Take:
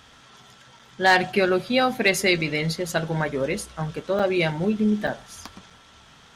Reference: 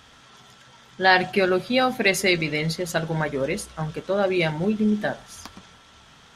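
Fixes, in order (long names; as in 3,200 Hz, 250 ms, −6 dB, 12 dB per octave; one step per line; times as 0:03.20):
clipped peaks rebuilt −8 dBFS
repair the gap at 0:00.79/0:04.19/0:05.07/0:05.70, 5.3 ms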